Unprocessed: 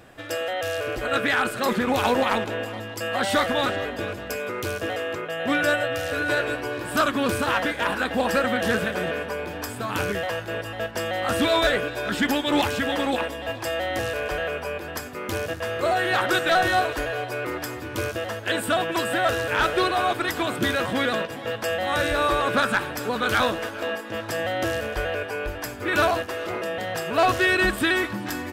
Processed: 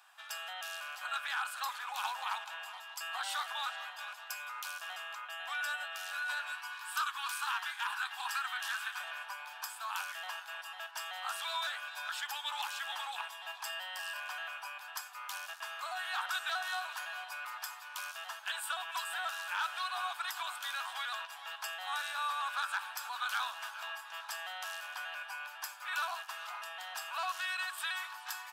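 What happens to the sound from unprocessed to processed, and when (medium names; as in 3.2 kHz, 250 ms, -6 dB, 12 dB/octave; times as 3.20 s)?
6.52–9.00 s: high-pass 880 Hz 24 dB/octave
13.69–14.20 s: rippled EQ curve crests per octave 1.3, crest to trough 8 dB
whole clip: compression 3:1, threshold -23 dBFS; steep high-pass 830 Hz 48 dB/octave; peaking EQ 2 kHz -9.5 dB 0.36 oct; trim -6.5 dB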